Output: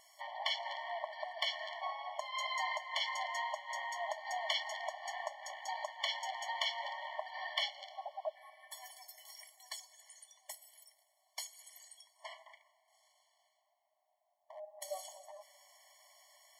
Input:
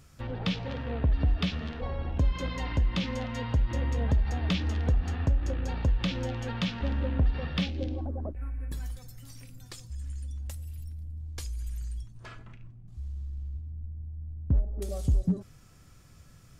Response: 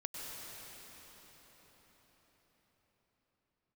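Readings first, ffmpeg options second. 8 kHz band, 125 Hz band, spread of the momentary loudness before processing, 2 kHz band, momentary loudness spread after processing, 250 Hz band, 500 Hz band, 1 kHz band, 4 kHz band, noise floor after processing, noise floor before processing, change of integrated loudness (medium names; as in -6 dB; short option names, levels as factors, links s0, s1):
no reading, under -40 dB, 14 LU, +1.0 dB, 18 LU, under -40 dB, -6.5 dB, +3.5 dB, +1.5 dB, -79 dBFS, -54 dBFS, -8.0 dB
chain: -filter_complex "[0:a]asplit=2[s0][s1];[1:a]atrim=start_sample=2205[s2];[s1][s2]afir=irnorm=-1:irlink=0,volume=0.1[s3];[s0][s3]amix=inputs=2:normalize=0,afftfilt=real='re*eq(mod(floor(b*sr/1024/580),2),1)':imag='im*eq(mod(floor(b*sr/1024/580),2),1)':win_size=1024:overlap=0.75,volume=1.5"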